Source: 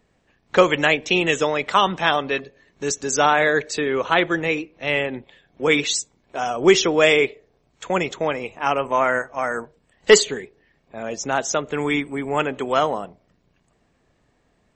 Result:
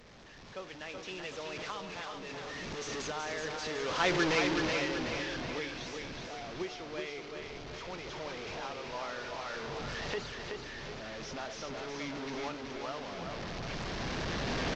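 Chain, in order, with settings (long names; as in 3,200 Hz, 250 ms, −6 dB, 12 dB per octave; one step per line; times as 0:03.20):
linear delta modulator 32 kbit/s, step −15.5 dBFS
source passing by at 0:04.27, 10 m/s, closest 2.2 metres
camcorder AGC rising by 6.8 dB per second
repeating echo 376 ms, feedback 50%, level −5 dB
level −8.5 dB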